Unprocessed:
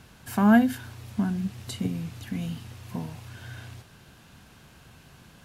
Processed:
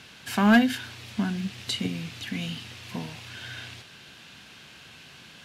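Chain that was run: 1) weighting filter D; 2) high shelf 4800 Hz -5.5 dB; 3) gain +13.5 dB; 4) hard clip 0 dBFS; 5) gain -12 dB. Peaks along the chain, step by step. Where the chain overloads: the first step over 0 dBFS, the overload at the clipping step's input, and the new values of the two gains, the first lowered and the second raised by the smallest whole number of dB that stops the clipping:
-6.5, -7.0, +6.5, 0.0, -12.0 dBFS; step 3, 6.5 dB; step 3 +6.5 dB, step 5 -5 dB

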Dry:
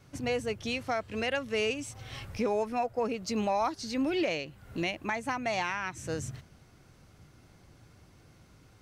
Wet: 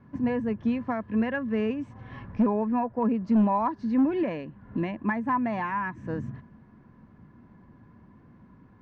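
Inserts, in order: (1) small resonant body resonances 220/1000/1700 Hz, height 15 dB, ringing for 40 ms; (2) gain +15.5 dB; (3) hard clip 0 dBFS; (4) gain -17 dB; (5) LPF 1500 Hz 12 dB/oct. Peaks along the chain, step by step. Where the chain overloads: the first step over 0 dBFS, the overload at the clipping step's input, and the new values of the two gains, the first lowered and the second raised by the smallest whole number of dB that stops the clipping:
-10.0, +5.5, 0.0, -17.0, -16.5 dBFS; step 2, 5.5 dB; step 2 +9.5 dB, step 4 -11 dB

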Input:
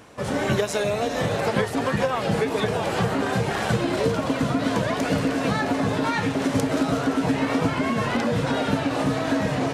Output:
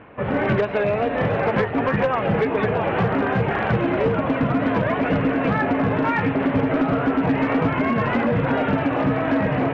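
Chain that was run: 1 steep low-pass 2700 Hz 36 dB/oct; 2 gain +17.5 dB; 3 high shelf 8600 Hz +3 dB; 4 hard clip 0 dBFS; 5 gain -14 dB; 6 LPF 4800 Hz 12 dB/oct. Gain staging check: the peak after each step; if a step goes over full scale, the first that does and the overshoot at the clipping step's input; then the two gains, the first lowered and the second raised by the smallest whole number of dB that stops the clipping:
-8.5, +9.0, +9.0, 0.0, -14.0, -13.5 dBFS; step 2, 9.0 dB; step 2 +8.5 dB, step 5 -5 dB

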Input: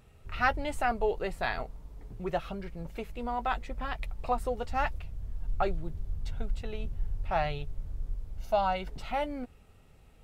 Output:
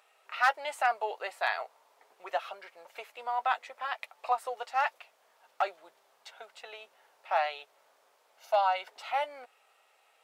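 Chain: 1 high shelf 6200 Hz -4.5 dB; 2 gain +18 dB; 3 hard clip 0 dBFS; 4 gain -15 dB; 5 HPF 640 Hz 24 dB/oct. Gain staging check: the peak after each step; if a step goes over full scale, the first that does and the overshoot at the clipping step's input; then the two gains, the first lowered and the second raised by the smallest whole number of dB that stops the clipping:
-11.5, +6.5, 0.0, -15.0, -11.5 dBFS; step 2, 6.5 dB; step 2 +11 dB, step 4 -8 dB

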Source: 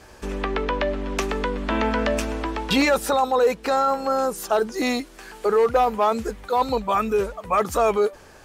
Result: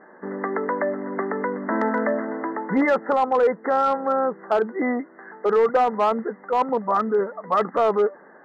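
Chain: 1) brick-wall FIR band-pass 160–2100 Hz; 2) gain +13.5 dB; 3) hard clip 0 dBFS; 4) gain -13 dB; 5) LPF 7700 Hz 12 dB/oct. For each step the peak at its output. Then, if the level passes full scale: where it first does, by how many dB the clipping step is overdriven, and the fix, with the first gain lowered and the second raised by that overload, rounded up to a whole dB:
-10.0, +3.5, 0.0, -13.0, -13.0 dBFS; step 2, 3.5 dB; step 2 +9.5 dB, step 4 -9 dB

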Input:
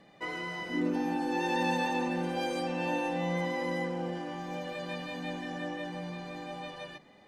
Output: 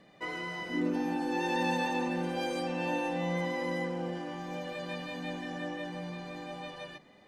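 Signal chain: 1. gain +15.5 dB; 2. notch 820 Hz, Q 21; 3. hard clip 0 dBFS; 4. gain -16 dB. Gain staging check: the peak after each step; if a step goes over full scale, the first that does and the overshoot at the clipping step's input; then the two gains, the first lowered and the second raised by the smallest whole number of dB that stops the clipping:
-3.0, -2.5, -2.5, -18.5 dBFS; no overload

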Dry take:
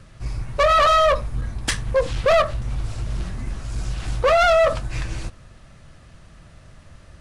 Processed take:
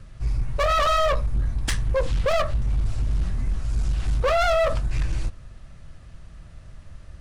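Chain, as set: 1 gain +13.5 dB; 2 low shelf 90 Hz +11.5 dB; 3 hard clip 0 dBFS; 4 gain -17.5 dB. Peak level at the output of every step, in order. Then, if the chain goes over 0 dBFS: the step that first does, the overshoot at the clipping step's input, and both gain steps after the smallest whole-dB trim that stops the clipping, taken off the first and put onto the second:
+2.0, +7.5, 0.0, -17.5 dBFS; step 1, 7.5 dB; step 1 +5.5 dB, step 4 -9.5 dB

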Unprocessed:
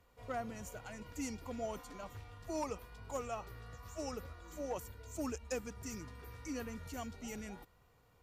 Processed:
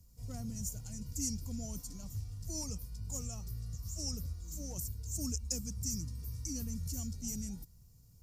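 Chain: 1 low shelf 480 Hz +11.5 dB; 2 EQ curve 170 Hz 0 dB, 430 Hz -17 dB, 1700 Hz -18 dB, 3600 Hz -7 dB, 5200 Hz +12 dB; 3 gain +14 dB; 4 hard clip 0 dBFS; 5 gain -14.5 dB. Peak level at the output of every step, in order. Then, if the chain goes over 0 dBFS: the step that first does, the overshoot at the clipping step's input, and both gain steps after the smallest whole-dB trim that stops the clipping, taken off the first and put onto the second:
-21.0, -18.5, -4.5, -4.5, -19.0 dBFS; no overload

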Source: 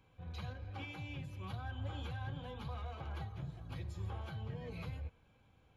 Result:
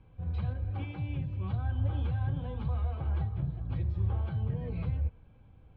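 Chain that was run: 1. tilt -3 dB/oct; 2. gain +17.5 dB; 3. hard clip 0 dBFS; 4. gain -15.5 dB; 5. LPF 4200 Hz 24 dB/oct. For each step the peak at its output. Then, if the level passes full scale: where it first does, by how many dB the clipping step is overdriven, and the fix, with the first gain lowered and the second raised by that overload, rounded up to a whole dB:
-22.5, -5.0, -5.0, -20.5, -20.5 dBFS; no overload

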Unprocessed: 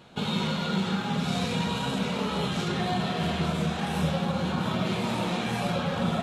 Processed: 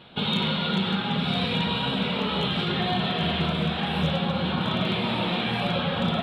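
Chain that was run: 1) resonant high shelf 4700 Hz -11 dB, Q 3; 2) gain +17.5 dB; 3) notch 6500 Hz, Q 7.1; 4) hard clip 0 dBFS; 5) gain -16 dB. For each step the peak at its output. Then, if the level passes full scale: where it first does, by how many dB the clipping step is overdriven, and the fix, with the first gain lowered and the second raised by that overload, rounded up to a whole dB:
-14.0, +3.5, +3.5, 0.0, -16.0 dBFS; step 2, 3.5 dB; step 2 +13.5 dB, step 5 -12 dB

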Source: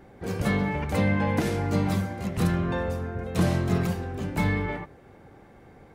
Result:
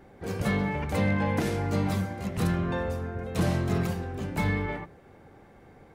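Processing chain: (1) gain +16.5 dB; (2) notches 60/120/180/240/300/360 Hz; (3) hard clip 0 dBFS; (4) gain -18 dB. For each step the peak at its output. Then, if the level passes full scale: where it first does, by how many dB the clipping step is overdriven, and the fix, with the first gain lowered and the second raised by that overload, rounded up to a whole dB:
+4.5, +4.0, 0.0, -18.0 dBFS; step 1, 4.0 dB; step 1 +12.5 dB, step 4 -14 dB

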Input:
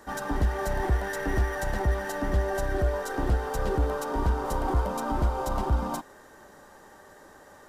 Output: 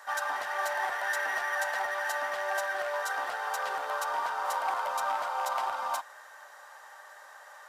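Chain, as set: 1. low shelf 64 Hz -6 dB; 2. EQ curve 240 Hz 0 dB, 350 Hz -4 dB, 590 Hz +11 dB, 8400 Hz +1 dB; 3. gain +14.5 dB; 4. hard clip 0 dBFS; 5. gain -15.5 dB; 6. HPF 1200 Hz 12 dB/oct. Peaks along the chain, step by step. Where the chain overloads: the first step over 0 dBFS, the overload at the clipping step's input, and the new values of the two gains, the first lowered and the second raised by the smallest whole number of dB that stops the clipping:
-15.5, -10.0, +4.5, 0.0, -15.5, -18.5 dBFS; step 3, 4.5 dB; step 3 +9.5 dB, step 5 -10.5 dB

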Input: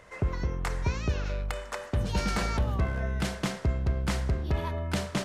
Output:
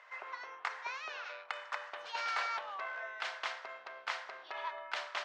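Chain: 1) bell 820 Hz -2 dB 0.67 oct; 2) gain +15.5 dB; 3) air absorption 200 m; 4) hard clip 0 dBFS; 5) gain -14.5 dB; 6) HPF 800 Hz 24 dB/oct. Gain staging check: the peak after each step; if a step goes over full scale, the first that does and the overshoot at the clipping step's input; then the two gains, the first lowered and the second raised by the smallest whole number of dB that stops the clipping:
-18.5, -3.0, -3.5, -3.5, -18.0, -20.5 dBFS; no overload

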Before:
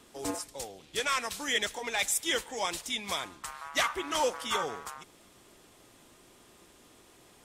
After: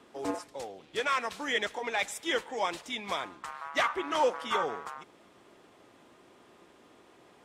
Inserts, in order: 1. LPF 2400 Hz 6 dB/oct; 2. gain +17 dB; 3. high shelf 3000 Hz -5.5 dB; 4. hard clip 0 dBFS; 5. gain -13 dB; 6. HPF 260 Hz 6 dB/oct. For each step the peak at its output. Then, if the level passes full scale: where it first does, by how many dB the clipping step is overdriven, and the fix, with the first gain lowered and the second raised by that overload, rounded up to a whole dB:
-20.0, -3.0, -3.0, -3.0, -16.0, -16.5 dBFS; no overload

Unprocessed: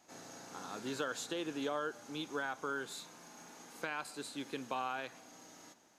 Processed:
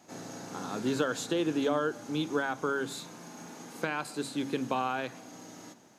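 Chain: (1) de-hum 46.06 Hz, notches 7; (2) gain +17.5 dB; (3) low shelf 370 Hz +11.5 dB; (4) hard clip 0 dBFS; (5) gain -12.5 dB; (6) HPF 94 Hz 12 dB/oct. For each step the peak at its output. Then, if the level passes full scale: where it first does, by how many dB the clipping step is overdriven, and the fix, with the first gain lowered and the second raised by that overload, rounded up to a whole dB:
-25.0, -7.5, -3.0, -3.0, -15.5, -15.5 dBFS; no overload

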